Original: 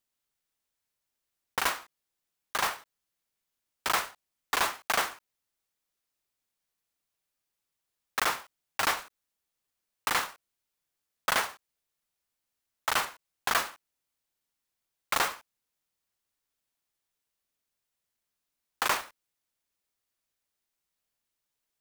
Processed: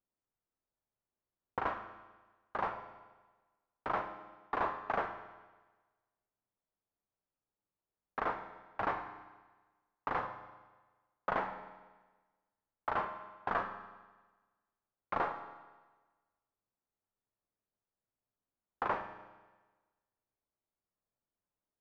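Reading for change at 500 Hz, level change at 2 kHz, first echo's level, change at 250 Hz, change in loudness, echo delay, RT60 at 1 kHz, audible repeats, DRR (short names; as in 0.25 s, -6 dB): -1.0 dB, -10.5 dB, none, -0.5 dB, -8.0 dB, none, 1.3 s, none, 7.0 dB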